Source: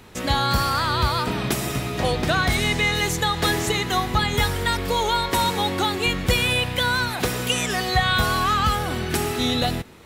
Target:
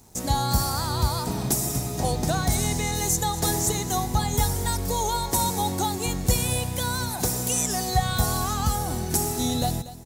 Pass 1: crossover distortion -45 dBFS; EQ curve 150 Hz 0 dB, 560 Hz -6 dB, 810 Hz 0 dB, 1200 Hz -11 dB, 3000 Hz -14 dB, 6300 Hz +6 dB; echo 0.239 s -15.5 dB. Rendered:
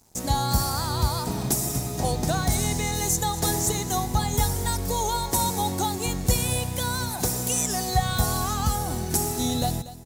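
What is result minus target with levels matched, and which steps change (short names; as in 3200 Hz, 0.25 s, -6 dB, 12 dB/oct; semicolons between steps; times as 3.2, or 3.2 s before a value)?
crossover distortion: distortion +6 dB
change: crossover distortion -51.5 dBFS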